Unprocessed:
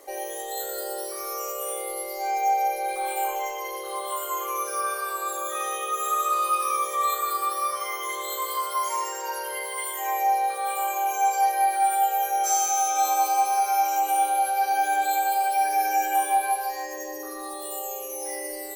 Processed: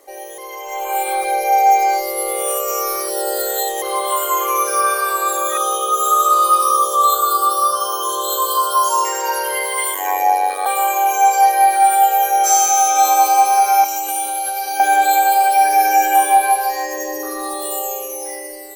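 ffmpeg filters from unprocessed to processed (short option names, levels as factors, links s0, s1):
-filter_complex "[0:a]asettb=1/sr,asplit=3[s0][s1][s2];[s0]atrim=end=5.574[s3];[s1]atrim=start=5.57:end=9.05,asetpts=PTS-STARTPTS,afade=t=in:d=0.004:c=qsin,afade=t=out:st=3.476:d=0.004:c=qsin,asuperstop=centerf=2100:order=8:qfactor=1.7[s4];[s2]atrim=start=9.046[s5];[s3][s4]acrossfade=d=0.004:c1=hsin:c2=qsin[s6];[s6][s5]acrossfade=d=0.004:c1=qsin:c2=hsin,asettb=1/sr,asplit=3[s7][s8][s9];[s7]atrim=end=9.944[s10];[s8]atrim=start=9.94:end=10.66,asetpts=PTS-STARTPTS,afade=t=in:d=0.004:c=qsin,afade=t=out:st=0.716:d=0.004:c=qsin,aeval=exprs='val(0)*sin(2*PI*47*n/s)':c=same[s11];[s9]atrim=start=10.656[s12];[s10][s11]acrossfade=d=0.004:c1=hsin:c2=qsin[s13];[s13][s12]acrossfade=d=0.004:c1=qsin:c2=hsin,asettb=1/sr,asplit=3[s14][s15][s16];[s14]atrim=end=11.624[s17];[s15]atrim=start=11.62:end=12.18,asetpts=PTS-STARTPTS,afade=t=in:d=0.004:c=qsin,afade=t=out:st=0.556:d=0.004:c=qsin,acrusher=bits=9:dc=4:mix=0:aa=0.000001[s18];[s16]atrim=start=12.176[s19];[s17][s18]acrossfade=d=0.004:c1=hsin:c2=qsin[s20];[s20][s19]acrossfade=d=0.004:c1=qsin:c2=hsin,asettb=1/sr,asplit=3[s21][s22][s23];[s21]atrim=end=13.844[s24];[s22]atrim=start=13.84:end=14.8,asetpts=PTS-STARTPTS,afade=t=in:d=0.004:c=qsin,afade=t=out:st=0.956:d=0.004:c=qsin,acrossover=split=290|3000[s25][s26][s27];[s26]acompressor=threshold=0.0224:ratio=6:attack=3.2:release=140:knee=2.83:detection=peak[s28];[s25][s28][s27]amix=inputs=3:normalize=0[s29];[s23]atrim=start=14.796[s30];[s24][s29]acrossfade=d=0.004:c1=hsin:c2=qsin[s31];[s31][s30]acrossfade=d=0.004:c1=qsin:c2=hsin,asplit=3[s32][s33][s34];[s32]atrim=end=0.382[s35];[s33]atrim=start=0.378:end=3.822,asetpts=PTS-STARTPTS,areverse[s36];[s34]atrim=start=3.818[s37];[s35][s36]acrossfade=d=0.004:c1=hsin:c2=hsin[s38];[s38][s37]acrossfade=d=0.004:c1=hsin:c2=hsin,dynaudnorm=f=150:g=13:m=3.76"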